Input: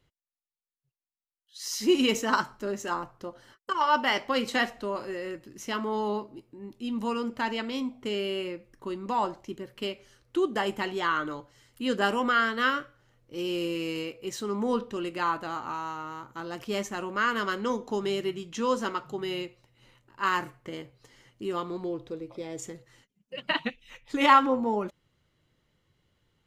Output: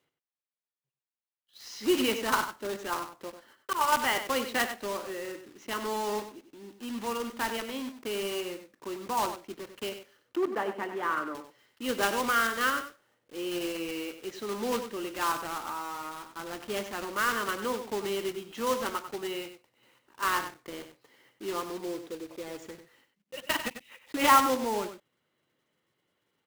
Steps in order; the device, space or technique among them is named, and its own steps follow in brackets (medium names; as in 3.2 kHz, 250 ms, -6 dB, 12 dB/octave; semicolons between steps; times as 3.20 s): early digital voice recorder (band-pass 260–3500 Hz; block-companded coder 3-bit); 10.36–11.35 s: three-band isolator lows -18 dB, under 150 Hz, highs -16 dB, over 2.1 kHz; delay 96 ms -10 dB; trim -2 dB